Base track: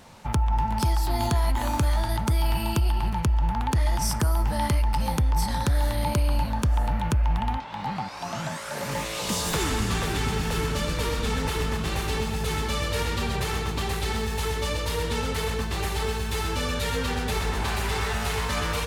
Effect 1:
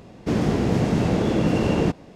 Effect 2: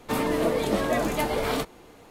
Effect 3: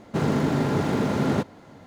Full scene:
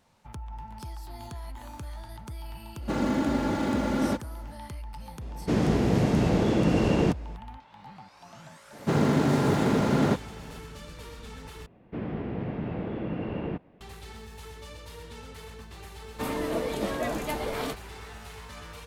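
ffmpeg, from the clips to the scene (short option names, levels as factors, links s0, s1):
-filter_complex "[3:a]asplit=2[s0][s1];[1:a]asplit=2[s2][s3];[0:a]volume=0.15[s4];[s0]aecho=1:1:3.5:0.64[s5];[s1]highpass=61[s6];[s3]lowpass=f=2800:w=0.5412,lowpass=f=2800:w=1.3066[s7];[s4]asplit=2[s8][s9];[s8]atrim=end=11.664[s10];[s7]atrim=end=2.15,asetpts=PTS-STARTPTS,volume=0.251[s11];[s9]atrim=start=13.806[s12];[s5]atrim=end=1.86,asetpts=PTS-STARTPTS,volume=0.596,afade=t=in:d=0.1,afade=t=out:st=1.76:d=0.1,adelay=2740[s13];[s2]atrim=end=2.15,asetpts=PTS-STARTPTS,volume=0.75,afade=t=in:d=0.004:c=hsin,afade=t=out:st=2.146:d=0.004:c=hsin,adelay=229761S[s14];[s6]atrim=end=1.86,asetpts=PTS-STARTPTS,afade=t=in:d=0.004:c=hsin,afade=t=out:st=1.856:d=0.004:c=hsin,adelay=8730[s15];[2:a]atrim=end=2.1,asetpts=PTS-STARTPTS,volume=0.531,afade=t=in:d=0.004:c=hsin,afade=t=out:st=2.096:d=0.004:c=hsin,adelay=16100[s16];[s10][s11]acrossfade=d=0.004:c1=hsin:c2=hsin[s17];[s17][s12]acrossfade=d=0.004:c1=hsin:c2=hsin[s18];[s18][s13][s14][s15][s16]amix=inputs=5:normalize=0"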